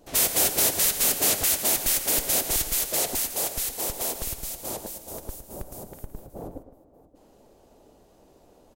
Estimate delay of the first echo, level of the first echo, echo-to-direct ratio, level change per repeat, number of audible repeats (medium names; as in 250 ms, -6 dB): 112 ms, -11.5 dB, -11.0 dB, no regular repeats, 2